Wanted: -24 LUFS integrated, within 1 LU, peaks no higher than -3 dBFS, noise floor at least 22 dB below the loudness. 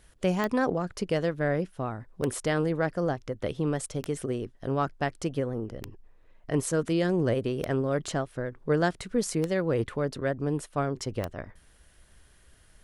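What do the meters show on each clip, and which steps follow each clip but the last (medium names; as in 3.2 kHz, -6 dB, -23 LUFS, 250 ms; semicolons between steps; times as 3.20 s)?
clicks found 7; loudness -29.5 LUFS; peak level -12.5 dBFS; loudness target -24.0 LUFS
-> de-click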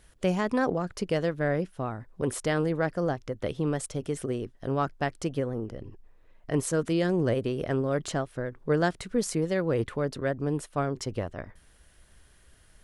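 clicks found 0; loudness -29.5 LUFS; peak level -12.5 dBFS; loudness target -24.0 LUFS
-> trim +5.5 dB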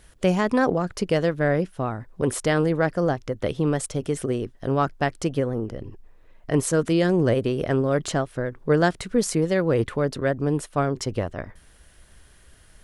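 loudness -24.0 LUFS; peak level -7.0 dBFS; noise floor -53 dBFS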